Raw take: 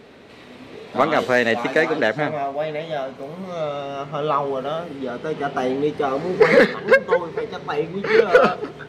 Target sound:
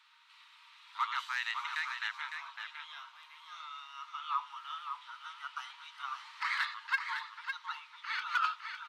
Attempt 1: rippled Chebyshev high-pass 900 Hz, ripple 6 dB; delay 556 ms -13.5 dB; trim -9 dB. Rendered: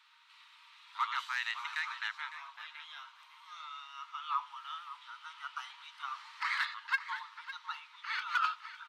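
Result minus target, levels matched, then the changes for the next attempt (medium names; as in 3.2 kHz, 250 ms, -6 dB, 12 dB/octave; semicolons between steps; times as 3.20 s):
echo-to-direct -6.5 dB
change: delay 556 ms -7 dB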